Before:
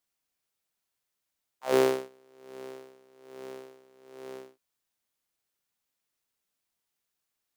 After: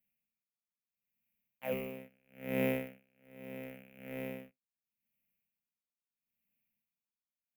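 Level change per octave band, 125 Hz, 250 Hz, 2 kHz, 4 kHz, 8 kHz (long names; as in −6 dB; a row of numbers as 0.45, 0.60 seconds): +5.0, −1.5, −2.5, −10.5, −14.0 decibels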